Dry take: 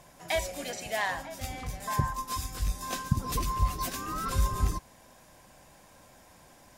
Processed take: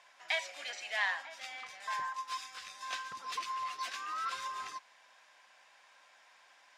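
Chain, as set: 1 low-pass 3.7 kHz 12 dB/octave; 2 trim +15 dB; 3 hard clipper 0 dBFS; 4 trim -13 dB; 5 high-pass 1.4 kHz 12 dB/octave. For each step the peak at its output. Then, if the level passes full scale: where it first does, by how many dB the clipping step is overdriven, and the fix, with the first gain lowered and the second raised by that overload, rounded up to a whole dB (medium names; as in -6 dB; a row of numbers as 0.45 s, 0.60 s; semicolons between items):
-12.0 dBFS, +3.0 dBFS, 0.0 dBFS, -13.0 dBFS, -20.0 dBFS; step 2, 3.0 dB; step 2 +12 dB, step 4 -10 dB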